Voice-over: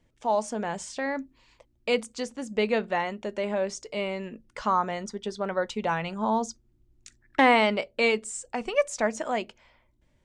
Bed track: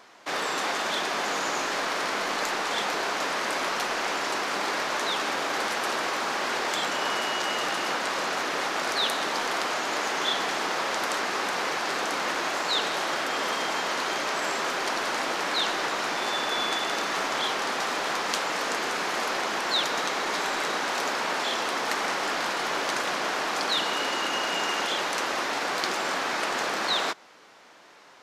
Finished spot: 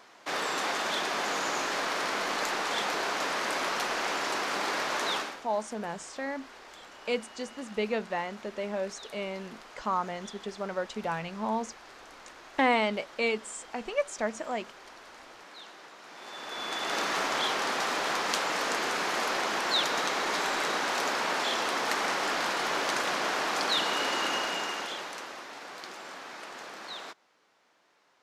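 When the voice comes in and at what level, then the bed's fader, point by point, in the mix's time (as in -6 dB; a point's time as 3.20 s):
5.20 s, -5.0 dB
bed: 5.17 s -2.5 dB
5.46 s -21.5 dB
16.01 s -21.5 dB
16.98 s -1.5 dB
24.30 s -1.5 dB
25.44 s -15 dB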